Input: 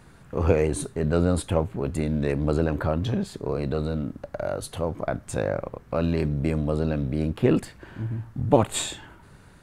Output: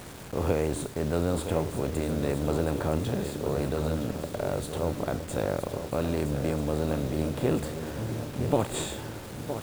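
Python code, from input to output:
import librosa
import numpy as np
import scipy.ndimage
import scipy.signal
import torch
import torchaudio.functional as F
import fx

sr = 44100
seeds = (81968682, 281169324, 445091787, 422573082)

y = fx.bin_compress(x, sr, power=0.6)
y = fx.echo_swing(y, sr, ms=1288, ratio=3, feedback_pct=43, wet_db=-9.5)
y = fx.quant_dither(y, sr, seeds[0], bits=6, dither='none')
y = y * 10.0 ** (-8.5 / 20.0)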